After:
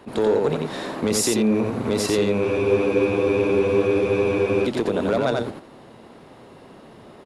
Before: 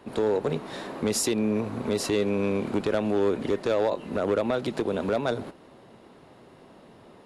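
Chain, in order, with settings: echo 88 ms -3.5 dB; in parallel at -3 dB: limiter -18 dBFS, peak gain reduction 6.5 dB; on the sum: spectral freeze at 2.47, 2.18 s; attack slew limiter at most 440 dB/s

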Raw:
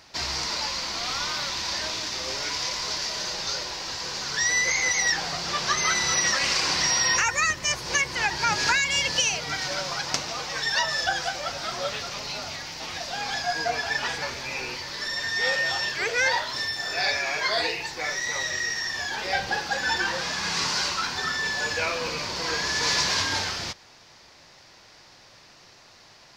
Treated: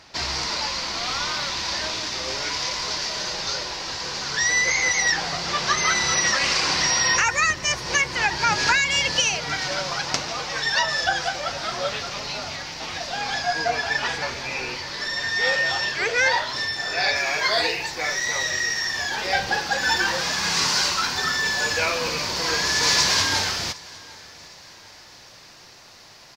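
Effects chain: high shelf 10000 Hz -10.5 dB, from 17.16 s +3.5 dB, from 19.81 s +10.5 dB; feedback echo 0.759 s, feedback 46%, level -22.5 dB; gain +3.5 dB

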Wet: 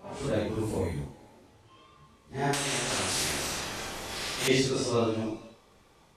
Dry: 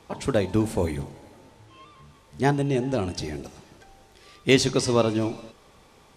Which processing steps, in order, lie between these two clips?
phase scrambler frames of 0.2 s; 2.53–4.48 spectral compressor 4:1; gain -5.5 dB

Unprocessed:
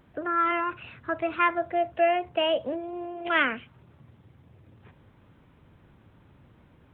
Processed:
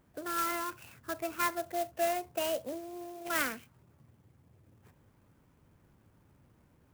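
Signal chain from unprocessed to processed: clock jitter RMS 0.053 ms; gain -8 dB

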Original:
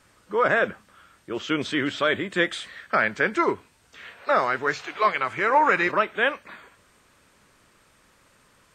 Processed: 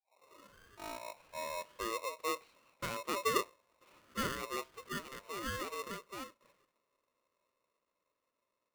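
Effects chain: tape start at the beginning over 2.75 s; Doppler pass-by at 3.68, 14 m/s, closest 13 m; band-pass 260 Hz, Q 1.7; polarity switched at an audio rate 790 Hz; gain -2.5 dB

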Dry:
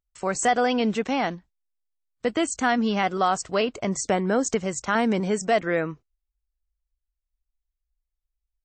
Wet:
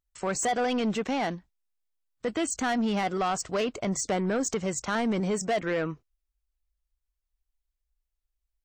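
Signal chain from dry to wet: in parallel at -1 dB: limiter -17.5 dBFS, peak gain reduction 7.5 dB; on the sum: soft clip -16 dBFS, distortion -13 dB; gain -5.5 dB

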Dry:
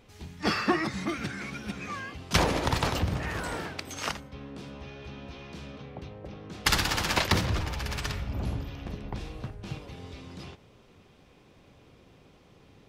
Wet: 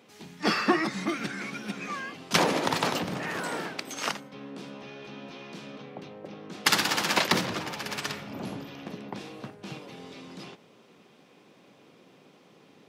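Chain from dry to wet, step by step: HPF 170 Hz 24 dB/oct; gain +2 dB

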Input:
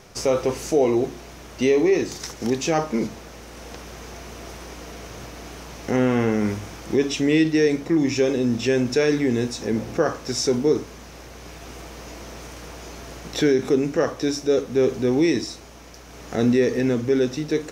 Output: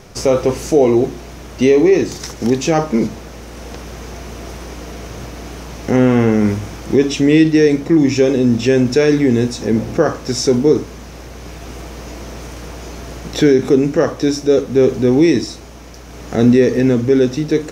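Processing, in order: low shelf 410 Hz +5.5 dB; gain +4.5 dB

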